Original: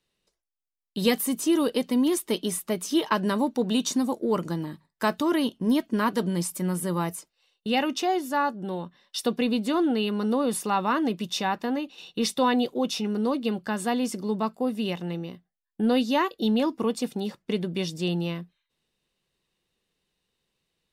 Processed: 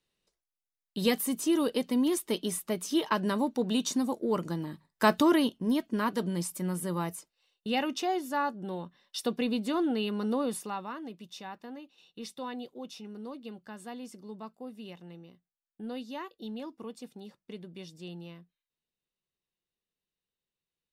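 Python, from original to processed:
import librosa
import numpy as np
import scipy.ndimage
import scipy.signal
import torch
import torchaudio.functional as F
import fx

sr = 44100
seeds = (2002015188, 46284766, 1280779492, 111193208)

y = fx.gain(x, sr, db=fx.line((4.64, -4.0), (5.19, 3.0), (5.62, -5.0), (10.43, -5.0), (10.97, -16.0)))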